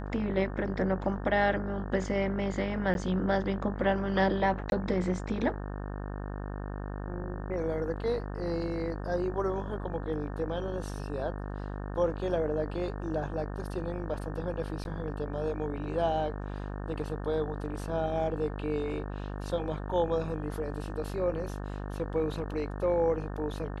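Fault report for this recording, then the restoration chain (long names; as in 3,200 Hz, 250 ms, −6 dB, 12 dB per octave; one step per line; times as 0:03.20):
mains buzz 50 Hz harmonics 36 −37 dBFS
0:02.94–0:02.95: drop-out 11 ms
0:04.70–0:04.72: drop-out 21 ms
0:14.84–0:14.85: drop-out 11 ms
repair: hum removal 50 Hz, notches 36
repair the gap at 0:02.94, 11 ms
repair the gap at 0:04.70, 21 ms
repair the gap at 0:14.84, 11 ms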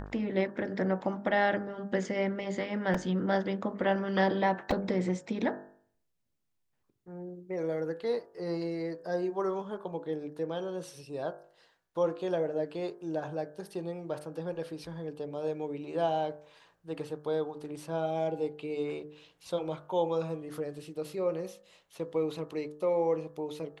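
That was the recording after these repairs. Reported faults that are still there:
none of them is left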